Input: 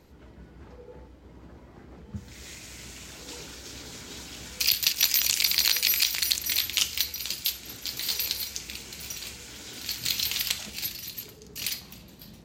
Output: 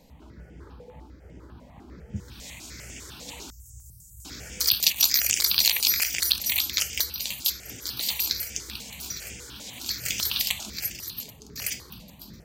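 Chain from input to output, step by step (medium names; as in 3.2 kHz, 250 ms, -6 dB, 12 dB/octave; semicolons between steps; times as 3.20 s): 3.50–4.25 s: inverse Chebyshev band-stop 290–3600 Hz, stop band 50 dB; stepped phaser 10 Hz 360–4100 Hz; trim +4 dB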